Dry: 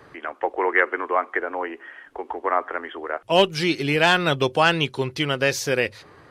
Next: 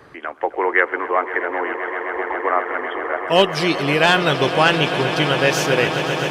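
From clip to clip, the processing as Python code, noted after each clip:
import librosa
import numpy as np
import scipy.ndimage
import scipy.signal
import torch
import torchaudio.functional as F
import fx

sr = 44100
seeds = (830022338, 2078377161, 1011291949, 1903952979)

y = fx.echo_swell(x, sr, ms=130, loudest=8, wet_db=-14.0)
y = y * 10.0 ** (2.5 / 20.0)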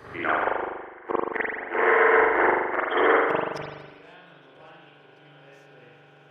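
y = fx.gate_flip(x, sr, shuts_db=-12.0, range_db=-41)
y = fx.rev_spring(y, sr, rt60_s=1.2, pass_ms=(41,), chirp_ms=50, drr_db=-8.0)
y = y * 10.0 ** (-1.5 / 20.0)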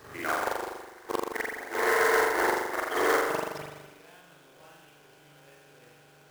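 y = fx.quant_companded(x, sr, bits=4)
y = y * 10.0 ** (-5.5 / 20.0)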